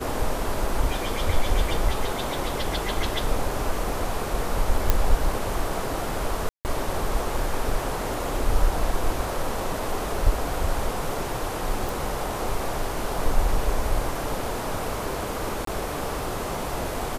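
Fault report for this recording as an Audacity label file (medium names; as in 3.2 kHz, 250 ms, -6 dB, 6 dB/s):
4.900000	4.900000	pop -4 dBFS
6.490000	6.650000	dropout 159 ms
11.890000	11.890000	pop
15.650000	15.670000	dropout 23 ms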